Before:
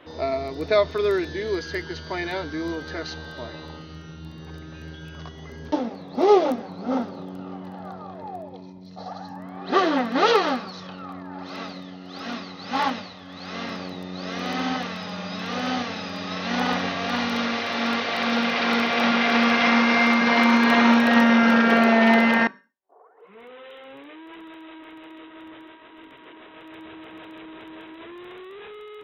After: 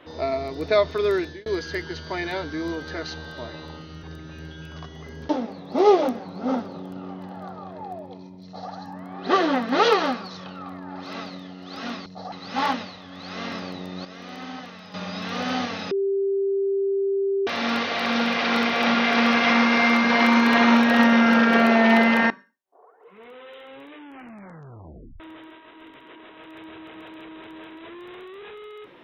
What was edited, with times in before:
1.2–1.46 fade out
4.03–4.46 cut
8.87–9.13 copy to 12.49
14.22–15.11 gain -10 dB
16.08–17.64 bleep 393 Hz -20 dBFS
24.1 tape stop 1.27 s

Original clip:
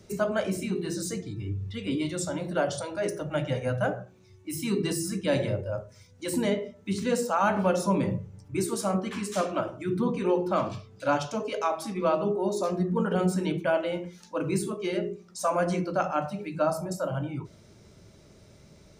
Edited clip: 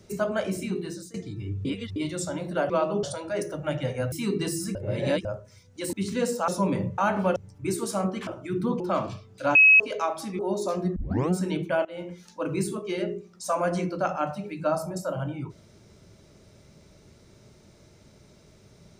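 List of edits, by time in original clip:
0.77–1.14 fade out linear, to -22 dB
1.65–1.96 reverse
3.79–4.56 cut
5.19–5.69 reverse
6.37–6.83 cut
7.38–7.76 move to 8.26
9.17–9.63 cut
10.16–10.42 cut
11.17–11.42 bleep 2560 Hz -11.5 dBFS
12.01–12.34 move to 2.7
12.91 tape start 0.35 s
13.8–14.07 fade in, from -22 dB

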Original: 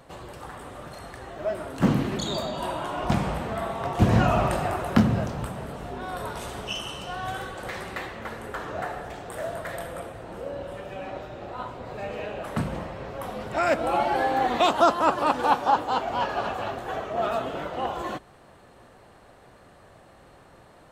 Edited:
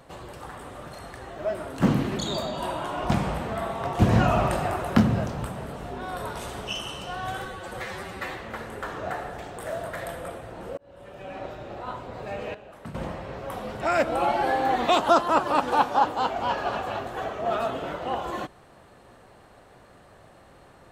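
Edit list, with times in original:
7.45–8.02 stretch 1.5×
10.49–11.17 fade in linear
12.26–12.66 gain -12 dB

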